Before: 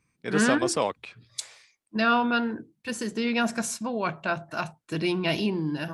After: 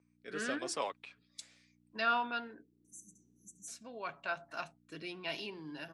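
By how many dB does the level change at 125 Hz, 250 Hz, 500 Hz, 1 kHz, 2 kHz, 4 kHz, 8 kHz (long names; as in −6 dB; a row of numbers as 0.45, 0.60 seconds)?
−22.5, −20.0, −14.0, −9.5, −10.5, −11.0, −13.0 decibels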